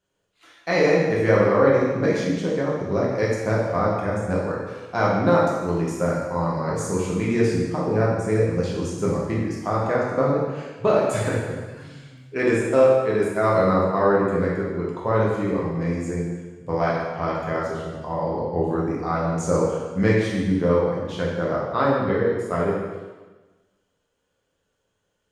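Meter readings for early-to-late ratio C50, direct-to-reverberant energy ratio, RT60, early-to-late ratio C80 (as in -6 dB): 0.0 dB, -5.5 dB, 1.3 s, 3.0 dB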